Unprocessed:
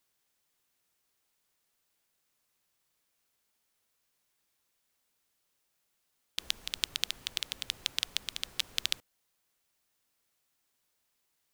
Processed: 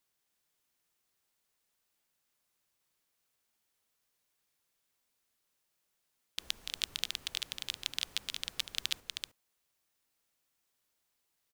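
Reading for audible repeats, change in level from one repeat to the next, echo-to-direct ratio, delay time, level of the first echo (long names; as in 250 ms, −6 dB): 1, repeats not evenly spaced, −5.5 dB, 314 ms, −5.5 dB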